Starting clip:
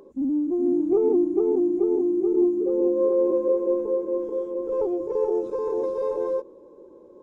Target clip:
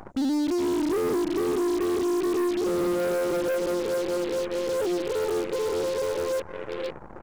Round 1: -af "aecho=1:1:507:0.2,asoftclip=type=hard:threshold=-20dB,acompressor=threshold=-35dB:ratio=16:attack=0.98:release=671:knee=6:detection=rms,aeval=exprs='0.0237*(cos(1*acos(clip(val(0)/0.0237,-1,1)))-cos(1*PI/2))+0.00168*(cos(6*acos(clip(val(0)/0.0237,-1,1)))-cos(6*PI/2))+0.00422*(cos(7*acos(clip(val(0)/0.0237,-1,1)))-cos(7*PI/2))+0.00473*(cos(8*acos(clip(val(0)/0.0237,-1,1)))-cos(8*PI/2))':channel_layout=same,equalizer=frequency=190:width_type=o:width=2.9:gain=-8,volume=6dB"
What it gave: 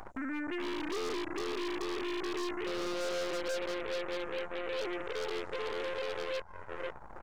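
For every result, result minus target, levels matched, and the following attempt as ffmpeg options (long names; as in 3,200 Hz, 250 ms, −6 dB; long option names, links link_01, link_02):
downward compressor: peak gain reduction +5.5 dB; 250 Hz band −2.5 dB
-af "aecho=1:1:507:0.2,asoftclip=type=hard:threshold=-20dB,acompressor=threshold=-29dB:ratio=16:attack=0.98:release=671:knee=6:detection=rms,aeval=exprs='0.0237*(cos(1*acos(clip(val(0)/0.0237,-1,1)))-cos(1*PI/2))+0.00168*(cos(6*acos(clip(val(0)/0.0237,-1,1)))-cos(6*PI/2))+0.00422*(cos(7*acos(clip(val(0)/0.0237,-1,1)))-cos(7*PI/2))+0.00473*(cos(8*acos(clip(val(0)/0.0237,-1,1)))-cos(8*PI/2))':channel_layout=same,equalizer=frequency=190:width_type=o:width=2.9:gain=-8,volume=6dB"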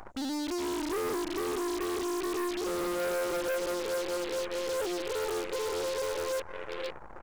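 250 Hz band −2.5 dB
-af "aecho=1:1:507:0.2,asoftclip=type=hard:threshold=-20dB,acompressor=threshold=-29dB:ratio=16:attack=0.98:release=671:knee=6:detection=rms,aeval=exprs='0.0237*(cos(1*acos(clip(val(0)/0.0237,-1,1)))-cos(1*PI/2))+0.00168*(cos(6*acos(clip(val(0)/0.0237,-1,1)))-cos(6*PI/2))+0.00422*(cos(7*acos(clip(val(0)/0.0237,-1,1)))-cos(7*PI/2))+0.00473*(cos(8*acos(clip(val(0)/0.0237,-1,1)))-cos(8*PI/2))':channel_layout=same,equalizer=frequency=190:width_type=o:width=2.9:gain=3,volume=6dB"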